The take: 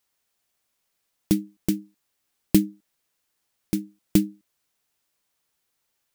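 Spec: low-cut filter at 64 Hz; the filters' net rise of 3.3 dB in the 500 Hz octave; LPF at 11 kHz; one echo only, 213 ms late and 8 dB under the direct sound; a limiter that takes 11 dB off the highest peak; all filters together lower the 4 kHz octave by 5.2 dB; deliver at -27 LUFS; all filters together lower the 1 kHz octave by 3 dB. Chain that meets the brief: high-pass 64 Hz; low-pass 11 kHz; peaking EQ 500 Hz +7.5 dB; peaking EQ 1 kHz -8 dB; peaking EQ 4 kHz -6.5 dB; peak limiter -14 dBFS; delay 213 ms -8 dB; trim +4 dB

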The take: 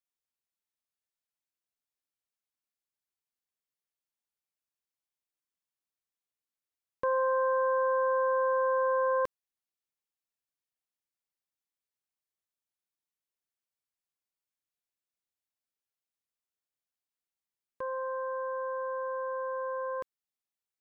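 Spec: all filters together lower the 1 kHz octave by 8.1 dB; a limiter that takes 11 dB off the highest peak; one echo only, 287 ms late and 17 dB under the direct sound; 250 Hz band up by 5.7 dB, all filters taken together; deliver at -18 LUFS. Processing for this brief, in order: peaking EQ 250 Hz +8 dB; peaking EQ 1 kHz -8.5 dB; peak limiter -32.5 dBFS; delay 287 ms -17 dB; trim +20.5 dB

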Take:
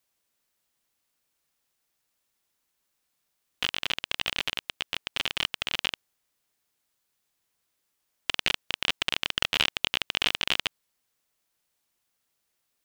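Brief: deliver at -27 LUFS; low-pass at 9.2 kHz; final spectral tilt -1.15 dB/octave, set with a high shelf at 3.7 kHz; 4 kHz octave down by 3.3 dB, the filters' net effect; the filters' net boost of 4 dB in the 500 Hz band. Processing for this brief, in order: low-pass 9.2 kHz; peaking EQ 500 Hz +5 dB; treble shelf 3.7 kHz +5.5 dB; peaking EQ 4 kHz -8.5 dB; trim +3.5 dB

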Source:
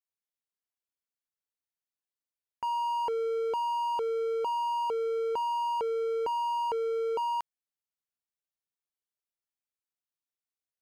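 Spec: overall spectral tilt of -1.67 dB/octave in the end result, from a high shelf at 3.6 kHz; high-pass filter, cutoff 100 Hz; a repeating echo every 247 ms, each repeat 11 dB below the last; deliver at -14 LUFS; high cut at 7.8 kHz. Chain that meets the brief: high-pass 100 Hz; low-pass 7.8 kHz; treble shelf 3.6 kHz +7.5 dB; feedback delay 247 ms, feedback 28%, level -11 dB; trim +16 dB

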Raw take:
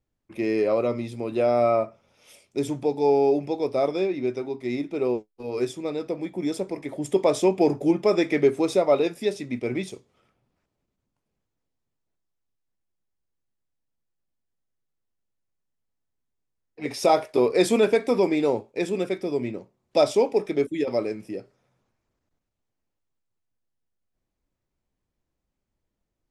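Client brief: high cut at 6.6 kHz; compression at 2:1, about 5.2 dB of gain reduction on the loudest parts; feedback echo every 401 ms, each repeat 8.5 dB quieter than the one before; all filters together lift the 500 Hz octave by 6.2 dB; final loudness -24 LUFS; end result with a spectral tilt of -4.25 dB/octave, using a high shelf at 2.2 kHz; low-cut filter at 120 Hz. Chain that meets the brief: high-pass 120 Hz; low-pass 6.6 kHz; peaking EQ 500 Hz +8 dB; treble shelf 2.2 kHz -5 dB; compression 2:1, threshold -18 dBFS; feedback delay 401 ms, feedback 38%, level -8.5 dB; trim -2 dB

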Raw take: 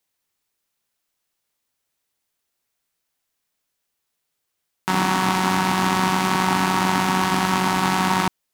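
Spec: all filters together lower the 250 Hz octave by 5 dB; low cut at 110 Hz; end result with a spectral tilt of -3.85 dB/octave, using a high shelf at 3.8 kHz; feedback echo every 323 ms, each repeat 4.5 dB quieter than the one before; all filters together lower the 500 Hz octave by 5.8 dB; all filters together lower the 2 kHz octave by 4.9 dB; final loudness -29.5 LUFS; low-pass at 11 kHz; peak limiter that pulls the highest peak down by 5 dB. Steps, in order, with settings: high-pass 110 Hz; low-pass 11 kHz; peaking EQ 250 Hz -6 dB; peaking EQ 500 Hz -5.5 dB; peaking EQ 2 kHz -4 dB; treble shelf 3.8 kHz -8.5 dB; peak limiter -13 dBFS; feedback delay 323 ms, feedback 60%, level -4.5 dB; trim -4 dB

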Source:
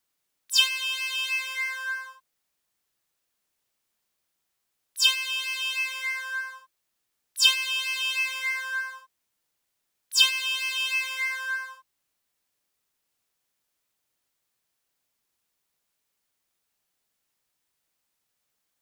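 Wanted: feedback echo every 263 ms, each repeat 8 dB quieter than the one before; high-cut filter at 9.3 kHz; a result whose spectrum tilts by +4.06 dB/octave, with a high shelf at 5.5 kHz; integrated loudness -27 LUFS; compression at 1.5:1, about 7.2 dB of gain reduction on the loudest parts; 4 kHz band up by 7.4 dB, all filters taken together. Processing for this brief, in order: low-pass 9.3 kHz; peaking EQ 4 kHz +8.5 dB; treble shelf 5.5 kHz +4.5 dB; compression 1.5:1, threshold -28 dBFS; feedback delay 263 ms, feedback 40%, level -8 dB; trim -4 dB

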